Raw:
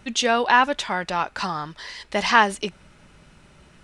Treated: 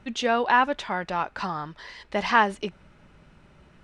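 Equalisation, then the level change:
low-pass filter 2,100 Hz 6 dB per octave
−2.0 dB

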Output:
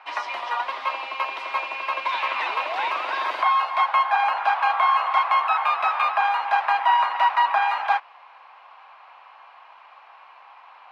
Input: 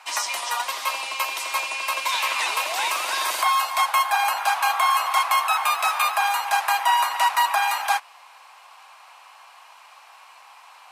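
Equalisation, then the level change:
high-frequency loss of the air 340 metres
high-shelf EQ 5,100 Hz −7.5 dB
+3.0 dB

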